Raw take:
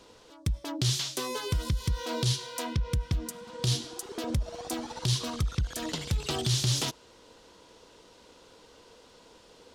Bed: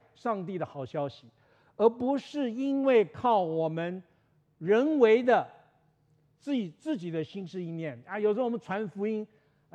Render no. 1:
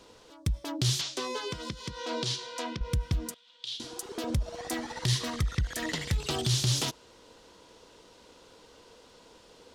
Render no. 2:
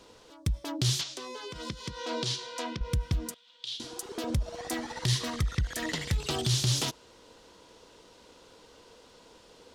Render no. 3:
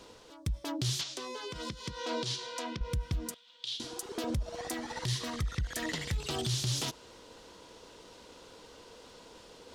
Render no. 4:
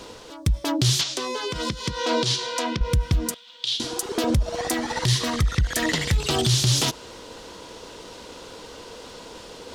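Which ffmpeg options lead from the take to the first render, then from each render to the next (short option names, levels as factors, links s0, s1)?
-filter_complex "[0:a]asettb=1/sr,asplit=3[s0][s1][s2];[s0]atrim=end=1.014[s3];[s1]atrim=start=1.01:end=2.81,asetpts=PTS-STARTPTS,afade=t=in:d=0.004:c=qsin,afade=t=out:st=1.796:d=0.004:c=qsin,acrossover=split=170 7600:gain=0.1 1 0.1[s4][s5][s6];[s4][s5][s6]amix=inputs=3:normalize=0[s7];[s2]atrim=start=2.806[s8];[s3][s7]acrossfade=d=0.004:c1=hsin:c2=qsin[s9];[s9][s8]acrossfade=d=0.004:c1=qsin:c2=hsin,asettb=1/sr,asplit=3[s10][s11][s12];[s10]atrim=end=3.344[s13];[s11]atrim=start=3.34:end=3.8,asetpts=PTS-STARTPTS,afade=t=in:d=0.004:c=qsin,afade=t=out:st=0.456:d=0.004:c=qsin,bandpass=f=3400:t=q:w=3.8[s14];[s12]atrim=start=3.796[s15];[s13][s14]acrossfade=d=0.004:c1=hsin:c2=qsin[s16];[s16][s15]acrossfade=d=0.004:c1=qsin:c2=hsin,asettb=1/sr,asplit=3[s17][s18][s19];[s17]atrim=end=4.574[s20];[s18]atrim=start=4.57:end=6.15,asetpts=PTS-STARTPTS,afade=t=in:d=0.004:c=qsin,afade=t=out:st=1.576:d=0.004:c=qsin,equalizer=f=1900:t=o:w=0.28:g=13[s21];[s19]atrim=start=6.146[s22];[s20][s21]acrossfade=d=0.004:c1=hsin:c2=qsin[s23];[s23][s22]acrossfade=d=0.004:c1=qsin:c2=hsin"
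-filter_complex "[0:a]asettb=1/sr,asplit=3[s0][s1][s2];[s0]atrim=end=1.034[s3];[s1]atrim=start=1.03:end=1.56,asetpts=PTS-STARTPTS,afade=t=in:d=0.004:c=qsin,afade=t=out:st=0.526:d=0.004:c=qsin,acompressor=threshold=0.0158:ratio=6:attack=3.2:release=140:knee=1:detection=peak[s4];[s2]atrim=start=1.556[s5];[s3][s4]acrossfade=d=0.004:c1=hsin:c2=qsin[s6];[s6][s5]acrossfade=d=0.004:c1=qsin:c2=hsin"
-af "alimiter=limit=0.0708:level=0:latency=1:release=225,areverse,acompressor=mode=upward:threshold=0.00447:ratio=2.5,areverse"
-af "volume=3.98"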